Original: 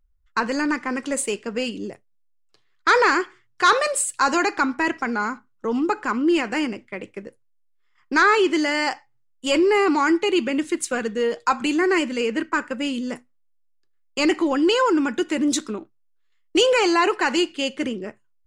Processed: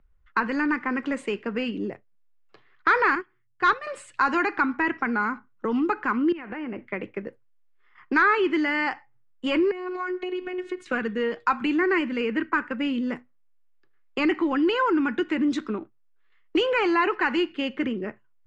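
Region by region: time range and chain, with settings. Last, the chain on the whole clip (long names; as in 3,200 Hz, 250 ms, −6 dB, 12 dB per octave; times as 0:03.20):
0:03.15–0:03.87: bass and treble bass +13 dB, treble +2 dB + expander for the loud parts 2.5 to 1, over −26 dBFS
0:06.32–0:06.87: low-pass filter 2,400 Hz + downward compressor 10 to 1, threshold −31 dBFS
0:09.71–0:10.86: downward compressor, threshold −28 dBFS + phases set to zero 364 Hz
whole clip: dynamic equaliser 600 Hz, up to −8 dB, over −36 dBFS, Q 1.6; Chebyshev low-pass filter 2,000 Hz, order 2; multiband upward and downward compressor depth 40%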